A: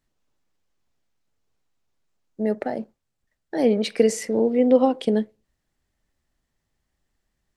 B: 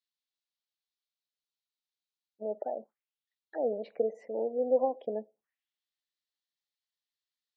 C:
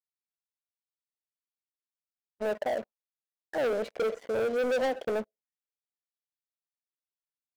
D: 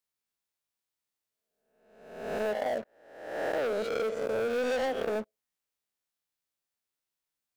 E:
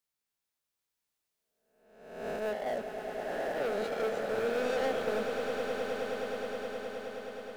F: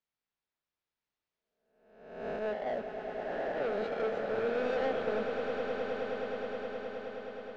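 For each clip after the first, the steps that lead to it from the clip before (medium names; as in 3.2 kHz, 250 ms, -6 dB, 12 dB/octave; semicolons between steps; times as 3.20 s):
auto-wah 640–4000 Hz, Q 2.9, down, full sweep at -25 dBFS; spectral gate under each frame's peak -30 dB strong; trim -4 dB
waveshaping leveller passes 5; trim -8 dB
reverse spectral sustain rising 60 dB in 0.87 s; compression, threshold -33 dBFS, peak gain reduction 9.5 dB; trim +4.5 dB
peak limiter -28.5 dBFS, peak gain reduction 10.5 dB; echo with a slow build-up 105 ms, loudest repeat 8, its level -9.5 dB
distance through air 190 m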